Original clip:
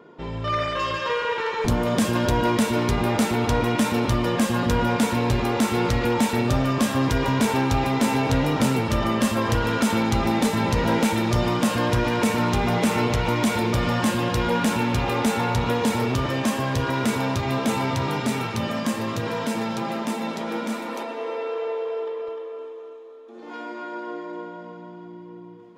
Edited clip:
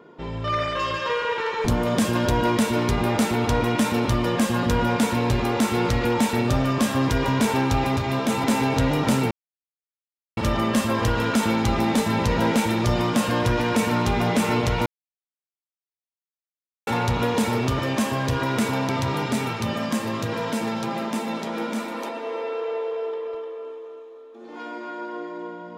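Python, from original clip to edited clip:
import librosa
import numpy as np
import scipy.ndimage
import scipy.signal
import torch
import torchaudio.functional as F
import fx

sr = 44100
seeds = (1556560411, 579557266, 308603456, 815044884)

y = fx.edit(x, sr, fx.insert_silence(at_s=8.84, length_s=1.06),
    fx.silence(start_s=13.33, length_s=2.01),
    fx.move(start_s=17.36, length_s=0.47, to_s=7.97), tone=tone)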